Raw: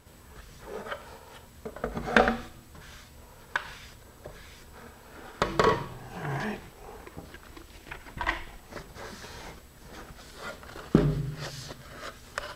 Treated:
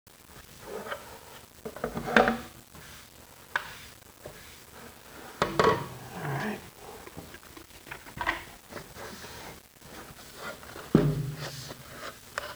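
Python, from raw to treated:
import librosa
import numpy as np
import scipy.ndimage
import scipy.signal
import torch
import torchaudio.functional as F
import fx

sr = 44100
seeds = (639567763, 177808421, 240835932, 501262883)

y = scipy.signal.sosfilt(scipy.signal.butter(2, 74.0, 'highpass', fs=sr, output='sos'), x)
y = fx.quant_dither(y, sr, seeds[0], bits=8, dither='none')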